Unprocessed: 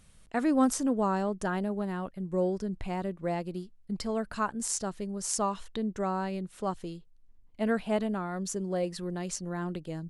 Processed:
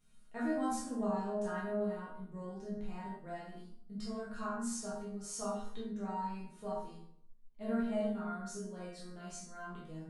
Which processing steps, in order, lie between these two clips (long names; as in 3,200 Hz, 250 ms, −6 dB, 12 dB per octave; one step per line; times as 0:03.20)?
resonators tuned to a chord D#3 sus4, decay 0.44 s
convolution reverb RT60 0.60 s, pre-delay 12 ms, DRR −4.5 dB
level +3 dB